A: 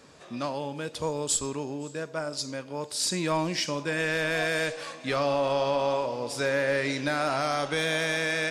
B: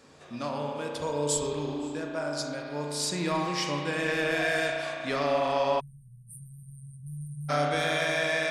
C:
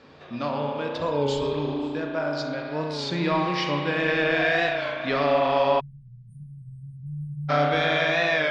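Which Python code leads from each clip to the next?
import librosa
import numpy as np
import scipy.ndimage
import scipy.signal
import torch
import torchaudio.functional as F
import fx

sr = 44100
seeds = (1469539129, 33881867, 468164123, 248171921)

y1 = fx.rev_spring(x, sr, rt60_s=2.7, pass_ms=(34,), chirp_ms=35, drr_db=-0.5)
y1 = fx.spec_erase(y1, sr, start_s=5.8, length_s=1.69, low_hz=200.0, high_hz=8500.0)
y1 = F.gain(torch.from_numpy(y1), -3.0).numpy()
y2 = scipy.signal.sosfilt(scipy.signal.butter(4, 4300.0, 'lowpass', fs=sr, output='sos'), y1)
y2 = fx.record_warp(y2, sr, rpm=33.33, depth_cents=100.0)
y2 = F.gain(torch.from_numpy(y2), 5.0).numpy()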